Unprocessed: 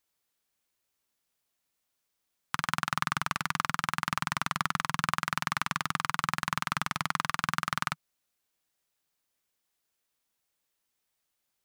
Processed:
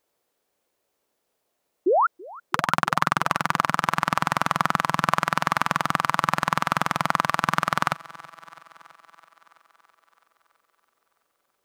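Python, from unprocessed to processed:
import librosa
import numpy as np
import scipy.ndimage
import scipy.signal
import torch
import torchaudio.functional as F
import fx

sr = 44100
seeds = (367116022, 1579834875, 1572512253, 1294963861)

y = fx.peak_eq(x, sr, hz=500.0, db=15.0, octaves=2.1)
y = fx.spec_paint(y, sr, seeds[0], shape='rise', start_s=1.86, length_s=0.21, low_hz=320.0, high_hz=1500.0, level_db=-21.0)
y = fx.echo_thinned(y, sr, ms=330, feedback_pct=68, hz=180.0, wet_db=-21.0)
y = y * 10.0 ** (2.5 / 20.0)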